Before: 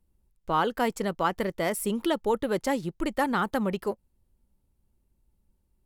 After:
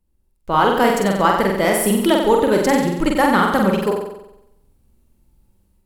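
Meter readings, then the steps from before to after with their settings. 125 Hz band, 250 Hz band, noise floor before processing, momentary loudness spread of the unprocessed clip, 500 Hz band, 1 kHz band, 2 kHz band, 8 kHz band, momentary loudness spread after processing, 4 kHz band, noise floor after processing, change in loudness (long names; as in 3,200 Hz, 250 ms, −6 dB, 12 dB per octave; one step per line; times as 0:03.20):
+11.5 dB, +11.5 dB, −73 dBFS, 5 LU, +11.5 dB, +11.5 dB, +11.5 dB, +12.0 dB, 5 LU, +11.5 dB, −63 dBFS, +11.5 dB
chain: automatic gain control gain up to 10 dB
flutter between parallel walls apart 7.9 metres, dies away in 0.84 s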